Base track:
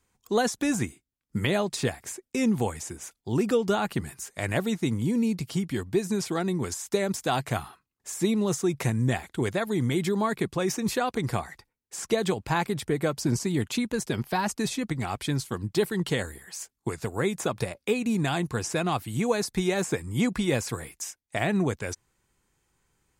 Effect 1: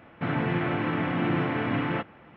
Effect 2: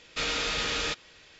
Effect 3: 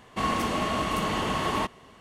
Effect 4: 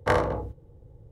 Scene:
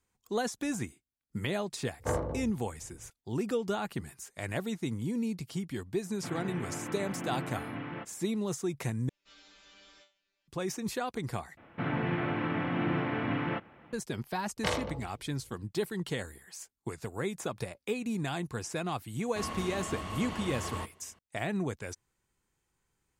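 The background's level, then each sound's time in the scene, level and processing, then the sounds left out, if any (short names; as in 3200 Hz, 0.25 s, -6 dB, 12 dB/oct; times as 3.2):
base track -7.5 dB
1.99 add 4 -11 dB + tilt shelf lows +6 dB, about 870 Hz
6.02 add 1 -12 dB
9.09 replace with 2 -12.5 dB + resonator bank G3 fifth, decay 0.31 s
11.57 replace with 1 -4.5 dB
14.57 add 4 -10.5 dB + band shelf 3600 Hz +13.5 dB
19.19 add 3 -12 dB + bell 84 Hz +13 dB 0.43 oct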